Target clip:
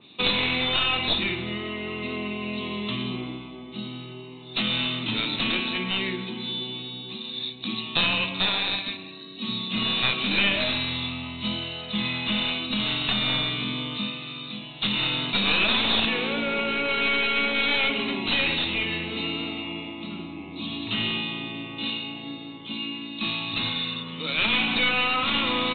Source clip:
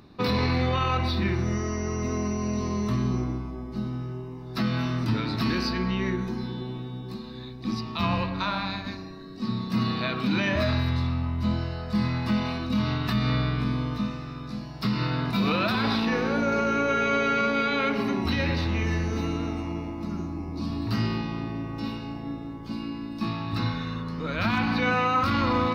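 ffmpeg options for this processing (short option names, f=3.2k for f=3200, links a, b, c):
-af "highpass=180,aexciter=amount=10:drive=7.5:freq=2.5k,aresample=8000,aeval=exprs='clip(val(0),-1,0.1)':c=same,aresample=44100,adynamicequalizer=threshold=0.0282:dfrequency=2800:dqfactor=0.7:tfrequency=2800:tqfactor=0.7:attack=5:release=100:ratio=0.375:range=2:mode=cutabove:tftype=highshelf,volume=-2dB"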